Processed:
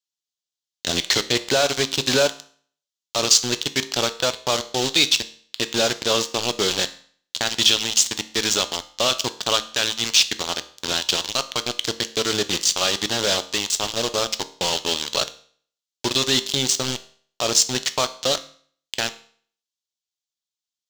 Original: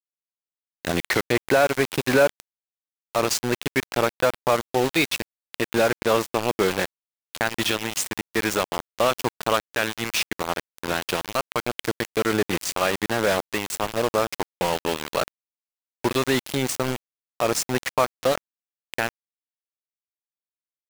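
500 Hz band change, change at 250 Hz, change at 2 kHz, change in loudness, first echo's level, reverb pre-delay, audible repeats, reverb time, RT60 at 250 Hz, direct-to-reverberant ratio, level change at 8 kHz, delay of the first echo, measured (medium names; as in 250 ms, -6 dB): -2.5 dB, -2.5 dB, -1.0 dB, +3.5 dB, no echo, 6 ms, no echo, 0.50 s, 0.50 s, 11.0 dB, +9.5 dB, no echo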